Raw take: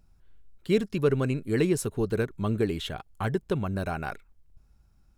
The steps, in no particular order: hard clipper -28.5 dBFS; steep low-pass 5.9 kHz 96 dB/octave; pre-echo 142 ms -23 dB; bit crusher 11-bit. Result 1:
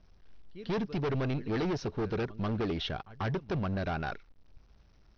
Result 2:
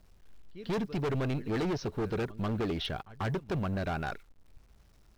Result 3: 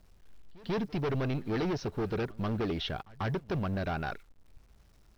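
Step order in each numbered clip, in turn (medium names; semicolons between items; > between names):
bit crusher > pre-echo > hard clipper > steep low-pass; steep low-pass > bit crusher > pre-echo > hard clipper; hard clipper > steep low-pass > bit crusher > pre-echo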